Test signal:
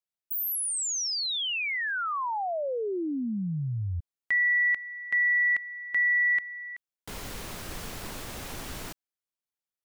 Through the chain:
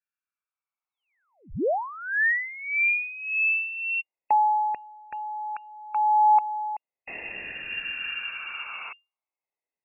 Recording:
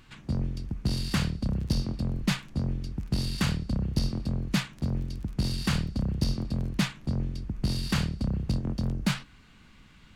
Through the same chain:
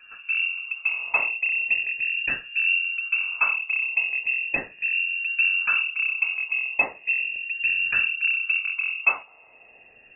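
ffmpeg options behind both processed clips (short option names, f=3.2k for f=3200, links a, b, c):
-af "afftfilt=real='re*pow(10,19/40*sin(2*PI*(0.63*log(max(b,1)*sr/1024/100)/log(2)-(0.37)*(pts-256)/sr)))':imag='im*pow(10,19/40*sin(2*PI*(0.63*log(max(b,1)*sr/1024/100)/log(2)-(0.37)*(pts-256)/sr)))':win_size=1024:overlap=0.75,lowpass=f=2.4k:t=q:w=0.5098,lowpass=f=2.4k:t=q:w=0.6013,lowpass=f=2.4k:t=q:w=0.9,lowpass=f=2.4k:t=q:w=2.563,afreqshift=-2800"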